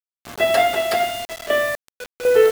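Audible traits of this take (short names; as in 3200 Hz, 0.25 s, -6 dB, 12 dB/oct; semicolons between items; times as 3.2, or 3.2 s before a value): random-step tremolo 4 Hz, depth 95%; a quantiser's noise floor 6-bit, dither none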